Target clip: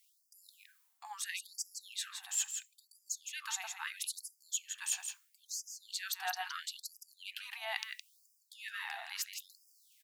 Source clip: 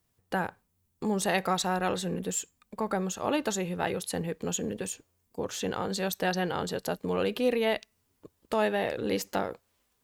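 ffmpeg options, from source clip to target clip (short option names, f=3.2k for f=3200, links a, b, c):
-af "areverse,acompressor=threshold=-40dB:ratio=8,areverse,aecho=1:1:165:0.447,afftfilt=real='re*gte(b*sr/1024,660*pow(4800/660,0.5+0.5*sin(2*PI*0.75*pts/sr)))':imag='im*gte(b*sr/1024,660*pow(4800/660,0.5+0.5*sin(2*PI*0.75*pts/sr)))':win_size=1024:overlap=0.75,volume=8.5dB"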